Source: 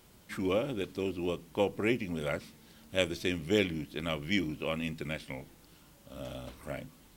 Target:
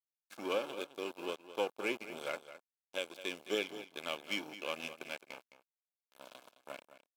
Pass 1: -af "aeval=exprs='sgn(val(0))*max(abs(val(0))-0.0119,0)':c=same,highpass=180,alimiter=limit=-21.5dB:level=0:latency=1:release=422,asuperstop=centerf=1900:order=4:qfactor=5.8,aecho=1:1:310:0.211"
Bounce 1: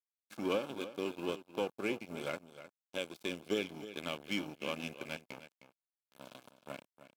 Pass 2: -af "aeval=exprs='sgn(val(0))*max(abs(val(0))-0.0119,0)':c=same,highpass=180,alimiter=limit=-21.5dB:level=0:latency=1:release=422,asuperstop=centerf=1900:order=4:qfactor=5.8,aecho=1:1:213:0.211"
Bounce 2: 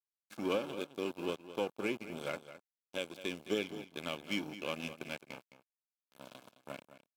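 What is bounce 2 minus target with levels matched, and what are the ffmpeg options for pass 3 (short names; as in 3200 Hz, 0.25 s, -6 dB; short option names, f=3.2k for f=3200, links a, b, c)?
250 Hz band +5.0 dB
-af "aeval=exprs='sgn(val(0))*max(abs(val(0))-0.0119,0)':c=same,highpass=420,alimiter=limit=-21.5dB:level=0:latency=1:release=422,asuperstop=centerf=1900:order=4:qfactor=5.8,aecho=1:1:213:0.211"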